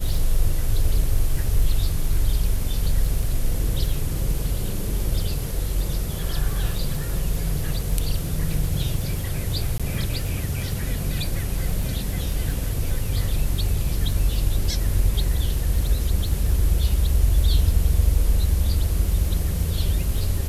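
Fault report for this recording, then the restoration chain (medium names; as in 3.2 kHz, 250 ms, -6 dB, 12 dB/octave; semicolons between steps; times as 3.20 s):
crackle 31 per s -28 dBFS
9.78–9.80 s: dropout 16 ms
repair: de-click; interpolate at 9.78 s, 16 ms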